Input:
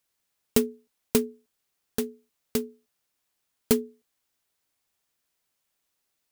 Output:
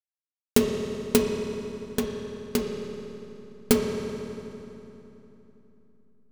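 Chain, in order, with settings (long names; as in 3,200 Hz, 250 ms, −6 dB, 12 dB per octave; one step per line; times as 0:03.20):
slack as between gear wheels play −25.5 dBFS
on a send: convolution reverb RT60 3.3 s, pre-delay 3 ms, DRR 1 dB
on the sum: level +3 dB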